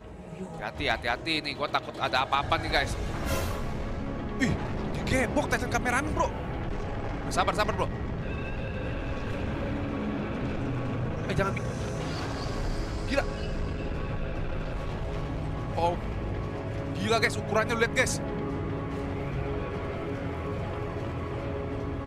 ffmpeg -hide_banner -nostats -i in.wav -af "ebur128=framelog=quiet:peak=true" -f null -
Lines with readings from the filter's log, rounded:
Integrated loudness:
  I:         -30.5 LUFS
  Threshold: -40.5 LUFS
Loudness range:
  LRA:         4.3 LU
  Threshold: -50.4 LUFS
  LRA low:   -32.9 LUFS
  LRA high:  -28.6 LUFS
True peak:
  Peak:      -11.8 dBFS